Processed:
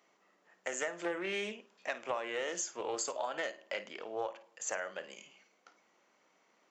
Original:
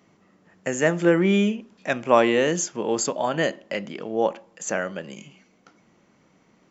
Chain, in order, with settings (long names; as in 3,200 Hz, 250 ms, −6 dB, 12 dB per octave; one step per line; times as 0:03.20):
high-pass filter 540 Hz 12 dB per octave
downward compressor 20 to 1, threshold −26 dBFS, peak gain reduction 14.5 dB
on a send: flutter between parallel walls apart 9 metres, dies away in 0.23 s
on the sum: highs frequency-modulated by the lows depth 0.17 ms
level −6 dB